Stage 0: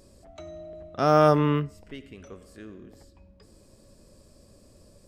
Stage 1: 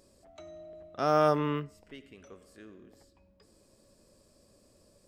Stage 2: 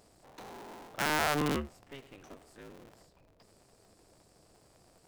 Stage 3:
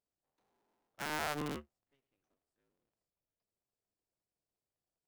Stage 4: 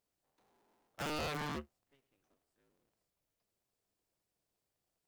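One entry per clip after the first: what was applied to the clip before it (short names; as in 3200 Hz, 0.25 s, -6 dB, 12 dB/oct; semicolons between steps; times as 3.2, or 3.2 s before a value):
low shelf 170 Hz -9 dB; gain -5 dB
cycle switcher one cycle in 2, inverted; limiter -18.5 dBFS, peak gain reduction 6.5 dB
upward expander 2.5:1, over -46 dBFS; gain -7 dB
wavefolder -39 dBFS; gain +6 dB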